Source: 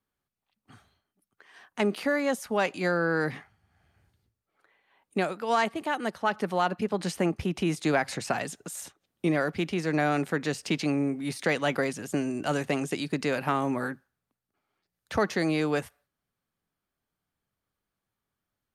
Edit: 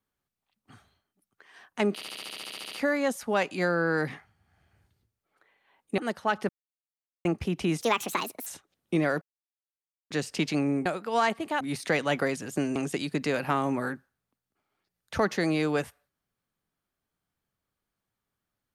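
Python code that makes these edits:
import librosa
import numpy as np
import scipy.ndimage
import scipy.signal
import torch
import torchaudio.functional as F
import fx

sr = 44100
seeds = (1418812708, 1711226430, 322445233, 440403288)

y = fx.edit(x, sr, fx.stutter(start_s=1.94, slice_s=0.07, count=12),
    fx.move(start_s=5.21, length_s=0.75, to_s=11.17),
    fx.silence(start_s=6.47, length_s=0.76),
    fx.speed_span(start_s=7.79, length_s=0.99, speed=1.51),
    fx.silence(start_s=9.53, length_s=0.89),
    fx.cut(start_s=12.32, length_s=0.42), tone=tone)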